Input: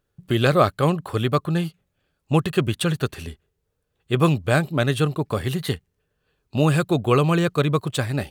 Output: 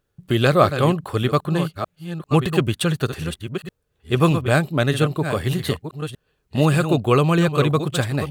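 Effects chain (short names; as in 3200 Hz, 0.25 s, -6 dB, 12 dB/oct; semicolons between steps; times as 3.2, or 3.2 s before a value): reverse delay 0.615 s, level -9 dB; gain +1.5 dB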